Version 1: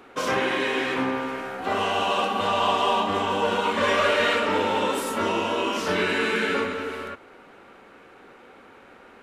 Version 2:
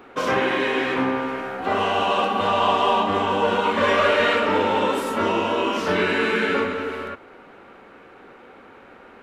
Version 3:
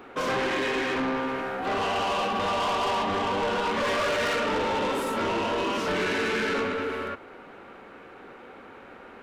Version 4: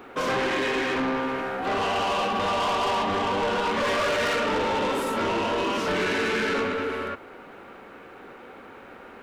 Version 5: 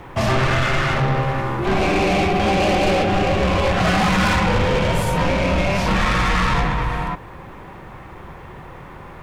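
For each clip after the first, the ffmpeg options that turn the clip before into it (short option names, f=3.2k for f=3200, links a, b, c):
-af "equalizer=f=9.9k:w=0.4:g=-8.5,volume=3.5dB"
-af "asoftclip=type=tanh:threshold=-23.5dB"
-af "acrusher=bits=11:mix=0:aa=0.000001,volume=1.5dB"
-af "afreqshift=-400,volume=7.5dB"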